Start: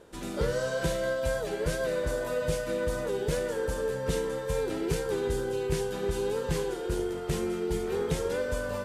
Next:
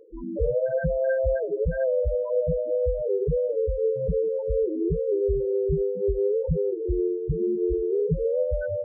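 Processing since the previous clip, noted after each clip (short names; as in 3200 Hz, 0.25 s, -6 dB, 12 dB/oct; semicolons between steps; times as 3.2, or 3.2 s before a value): loudest bins only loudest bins 4; notch 940 Hz, Q 11; gain +7.5 dB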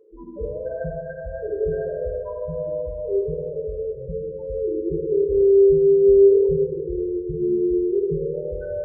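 small resonant body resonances 360/1000 Hz, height 9 dB; reverb RT60 2.0 s, pre-delay 4 ms, DRR -0.5 dB; gain -7.5 dB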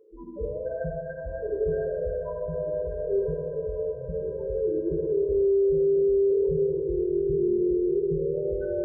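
diffused feedback echo 1.226 s, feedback 42%, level -11 dB; limiter -15 dBFS, peak gain reduction 8.5 dB; gain -2.5 dB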